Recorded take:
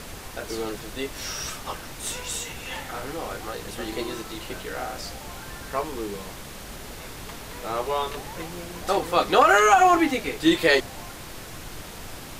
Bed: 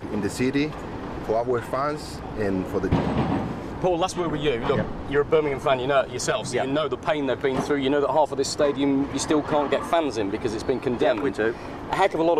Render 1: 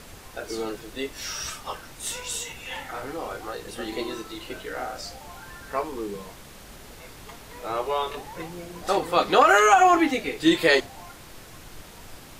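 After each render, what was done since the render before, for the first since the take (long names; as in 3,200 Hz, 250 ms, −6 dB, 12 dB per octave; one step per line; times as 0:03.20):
noise reduction from a noise print 6 dB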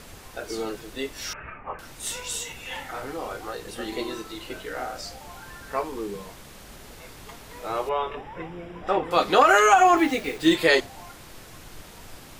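0:01.33–0:01.79: Chebyshev low-pass filter 2,500 Hz, order 6
0:07.89–0:09.11: Savitzky-Golay smoothing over 25 samples
0:09.97–0:10.55: hold until the input has moved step −39 dBFS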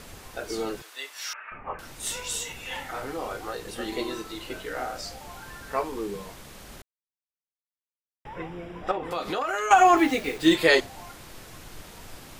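0:00.82–0:01.52: Chebyshev high-pass filter 1,100 Hz
0:06.82–0:08.25: silence
0:08.91–0:09.71: downward compressor 4 to 1, threshold −27 dBFS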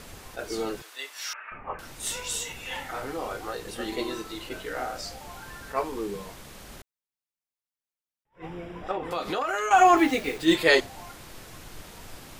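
level that may rise only so fast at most 290 dB per second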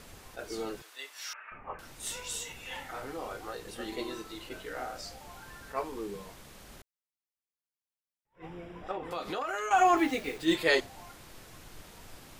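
level −6 dB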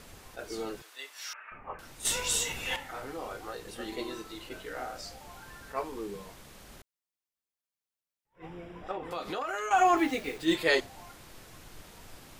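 0:02.05–0:02.76: clip gain +8.5 dB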